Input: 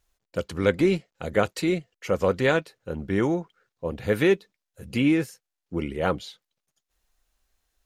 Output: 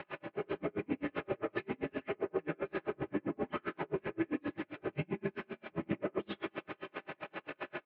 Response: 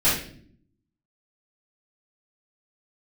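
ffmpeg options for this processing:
-filter_complex "[0:a]aeval=exprs='val(0)+0.5*0.0531*sgn(val(0))':c=same,bandreject=f=60:t=h:w=6,bandreject=f=120:t=h:w=6,bandreject=f=180:t=h:w=6,bandreject=f=240:t=h:w=6,bandreject=f=300:t=h:w=6,aecho=1:1:71:0.631,asplit=2[a][b];[b]asetrate=66075,aresample=44100,atempo=0.66742,volume=-10dB[c];[a][c]amix=inputs=2:normalize=0,acompressor=threshold=-24dB:ratio=6,asoftclip=type=tanh:threshold=-24dB,aecho=1:1:4.4:0.55,highpass=f=270:t=q:w=0.5412,highpass=f=270:t=q:w=1.307,lowpass=f=2.7k:t=q:w=0.5176,lowpass=f=2.7k:t=q:w=0.7071,lowpass=f=2.7k:t=q:w=1.932,afreqshift=-94,alimiter=level_in=4dB:limit=-24dB:level=0:latency=1:release=14,volume=-4dB,asplit=2[d][e];[e]equalizer=f=390:w=0.66:g=10[f];[1:a]atrim=start_sample=2205[g];[f][g]afir=irnorm=-1:irlink=0,volume=-20dB[h];[d][h]amix=inputs=2:normalize=0,aeval=exprs='val(0)*pow(10,-39*(0.5-0.5*cos(2*PI*7.6*n/s))/20)':c=same,volume=-1.5dB"

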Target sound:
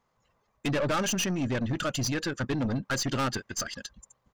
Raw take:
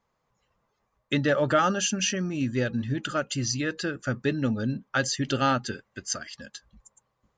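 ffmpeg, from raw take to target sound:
-af "atempo=1.7,aeval=exprs='(tanh(25.1*val(0)+0.3)-tanh(0.3))/25.1':c=same,volume=3.5dB"

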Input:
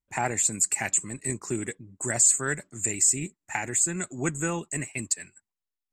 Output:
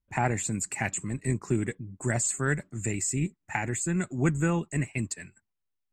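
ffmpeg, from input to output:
-af "bass=f=250:g=8,treble=f=4k:g=-10"

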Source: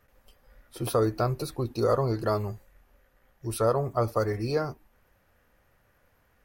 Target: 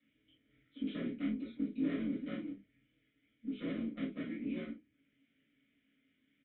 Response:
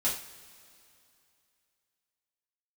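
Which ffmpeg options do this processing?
-filter_complex "[0:a]equalizer=f=550:w=1.5:g=2.5,acrossover=split=600|3000[a][b][c];[c]acompressor=mode=upward:threshold=-59dB:ratio=2.5[d];[a][b][d]amix=inputs=3:normalize=0,aeval=exprs='val(0)*sin(2*PI*86*n/s)':c=same,aresample=8000,aeval=exprs='clip(val(0),-1,0.015)':c=same,aresample=44100,asplit=3[e][f][g];[e]bandpass=f=270:t=q:w=8,volume=0dB[h];[f]bandpass=f=2.29k:t=q:w=8,volume=-6dB[i];[g]bandpass=f=3.01k:t=q:w=8,volume=-9dB[j];[h][i][j]amix=inputs=3:normalize=0[k];[1:a]atrim=start_sample=2205,atrim=end_sample=3528[l];[k][l]afir=irnorm=-1:irlink=0"

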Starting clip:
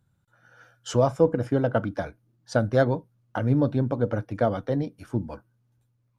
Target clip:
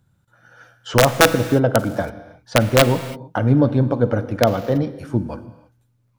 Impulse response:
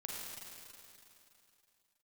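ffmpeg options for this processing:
-filter_complex "[0:a]acrossover=split=4400[a][b];[b]acompressor=threshold=-56dB:ratio=4:attack=1:release=60[c];[a][c]amix=inputs=2:normalize=0,aeval=exprs='(mod(3.35*val(0)+1,2)-1)/3.35':c=same,asplit=2[d][e];[1:a]atrim=start_sample=2205,afade=t=out:st=0.39:d=0.01,atrim=end_sample=17640[f];[e][f]afir=irnorm=-1:irlink=0,volume=-7.5dB[g];[d][g]amix=inputs=2:normalize=0,volume=5dB"

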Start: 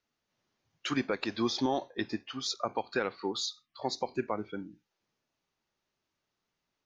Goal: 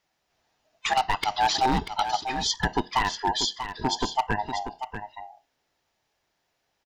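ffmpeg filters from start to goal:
-filter_complex "[0:a]afftfilt=real='real(if(lt(b,1008),b+24*(1-2*mod(floor(b/24),2)),b),0)':imag='imag(if(lt(b,1008),b+24*(1-2*mod(floor(b/24),2)),b),0)':win_size=2048:overlap=0.75,aeval=exprs='0.075*(abs(mod(val(0)/0.075+3,4)-2)-1)':c=same,asplit=2[a][b];[b]aecho=0:1:639:0.335[c];[a][c]amix=inputs=2:normalize=0,volume=8dB"

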